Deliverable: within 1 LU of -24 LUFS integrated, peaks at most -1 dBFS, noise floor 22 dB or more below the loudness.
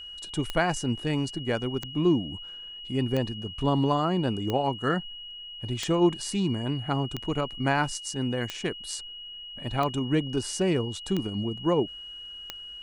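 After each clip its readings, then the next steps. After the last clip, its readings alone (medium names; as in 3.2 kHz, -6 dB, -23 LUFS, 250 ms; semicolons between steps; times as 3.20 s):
clicks found 10; steady tone 2.9 kHz; tone level -39 dBFS; loudness -28.0 LUFS; peak level -11.0 dBFS; loudness target -24.0 LUFS
-> de-click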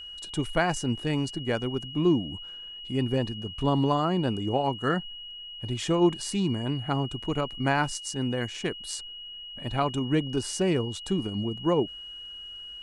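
clicks found 0; steady tone 2.9 kHz; tone level -39 dBFS
-> band-stop 2.9 kHz, Q 30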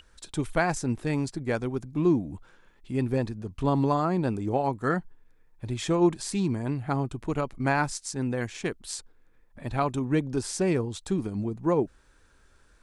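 steady tone not found; loudness -28.5 LUFS; peak level -11.0 dBFS; loudness target -24.0 LUFS
-> trim +4.5 dB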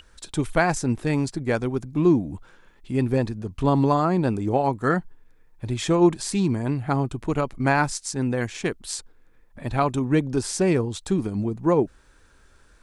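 loudness -24.0 LUFS; peak level -6.5 dBFS; noise floor -56 dBFS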